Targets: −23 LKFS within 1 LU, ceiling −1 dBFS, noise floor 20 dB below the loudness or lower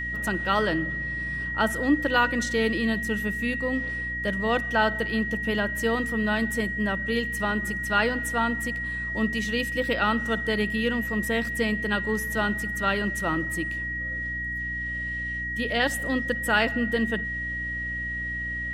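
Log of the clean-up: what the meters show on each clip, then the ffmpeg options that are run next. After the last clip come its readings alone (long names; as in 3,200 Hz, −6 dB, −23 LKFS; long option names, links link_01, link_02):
mains hum 60 Hz; hum harmonics up to 300 Hz; level of the hum −35 dBFS; interfering tone 1,900 Hz; level of the tone −29 dBFS; integrated loudness −26.0 LKFS; sample peak −9.5 dBFS; target loudness −23.0 LKFS
→ -af "bandreject=frequency=60:width_type=h:width=6,bandreject=frequency=120:width_type=h:width=6,bandreject=frequency=180:width_type=h:width=6,bandreject=frequency=240:width_type=h:width=6,bandreject=frequency=300:width_type=h:width=6"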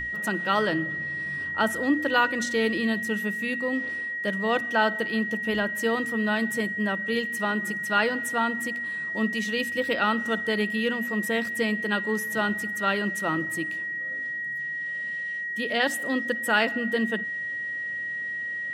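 mains hum none found; interfering tone 1,900 Hz; level of the tone −29 dBFS
→ -af "bandreject=frequency=1900:width=30"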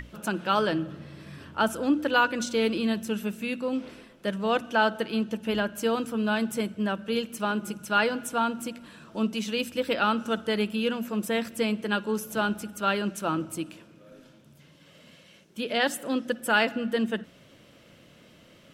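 interfering tone none found; integrated loudness −28.0 LKFS; sample peak −9.0 dBFS; target loudness −23.0 LKFS
→ -af "volume=5dB"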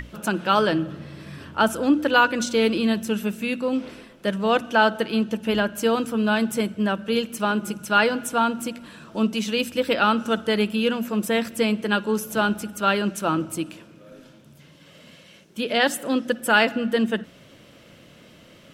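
integrated loudness −23.0 LKFS; sample peak −4.0 dBFS; background noise floor −50 dBFS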